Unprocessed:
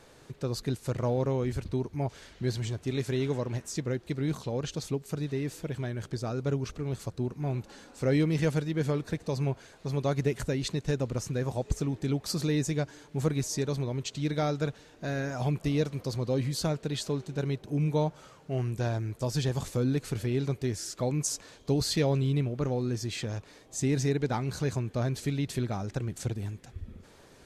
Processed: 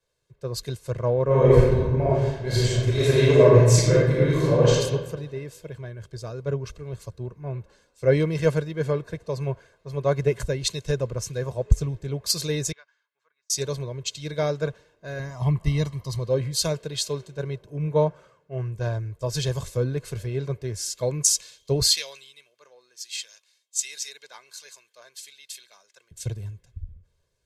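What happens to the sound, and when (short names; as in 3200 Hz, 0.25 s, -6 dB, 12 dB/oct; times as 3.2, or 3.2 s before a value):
1.24–4.71 reverb throw, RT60 1.8 s, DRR -7 dB
12.72–13.5 ladder band-pass 1600 Hz, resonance 40%
15.19–16.19 comb 1 ms
21.87–26.11 Bessel high-pass 1200 Hz
whole clip: comb 1.9 ms, depth 64%; three-band expander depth 100%; gain +2 dB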